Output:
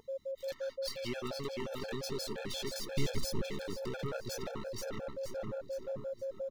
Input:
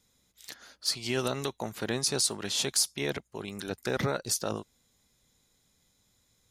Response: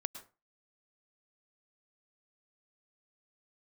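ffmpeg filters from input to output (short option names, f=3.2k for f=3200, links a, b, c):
-filter_complex "[0:a]aeval=exprs='if(lt(val(0),0),0.447*val(0),val(0))':c=same,asplit=2[a][b];[b]adelay=968,lowpass=f=900:p=1,volume=-10dB,asplit=2[c][d];[d]adelay=968,lowpass=f=900:p=1,volume=0.26,asplit=2[e][f];[f]adelay=968,lowpass=f=900:p=1,volume=0.26[g];[c][e][g]amix=inputs=3:normalize=0[h];[a][h]amix=inputs=2:normalize=0,aeval=exprs='val(0)+0.00891*sin(2*PI*540*n/s)':c=same,equalizer=f=9.4k:w=0.96:g=-14,asplit=2[i][j];[j]aecho=0:1:470|940|1410|1880:0.501|0.185|0.0686|0.0254[k];[i][k]amix=inputs=2:normalize=0,acompressor=threshold=-40dB:ratio=3,asoftclip=type=hard:threshold=-38dB,asettb=1/sr,asplit=3[l][m][n];[l]atrim=end=2.894[o];[m]atrim=start=2.89:end=3.47,asetpts=PTS-STARTPTS,afade=t=in:d=0.004:c=qsin,afade=t=out:st=0.576:d=0.004:c=qsin,bass=f=250:g=12,treble=f=4k:g=5[p];[n]atrim=start=3.466[q];[o][p]acrossfade=d=0.004:c1=hsin:c2=qsin[r];[r][q]acrossfade=d=0.004:c1=qsin:c2=hsin,afftfilt=real='re*gt(sin(2*PI*5.7*pts/sr)*(1-2*mod(floor(b*sr/1024/450),2)),0)':imag='im*gt(sin(2*PI*5.7*pts/sr)*(1-2*mod(floor(b*sr/1024/450),2)),0)':win_size=1024:overlap=0.75,volume=7dB"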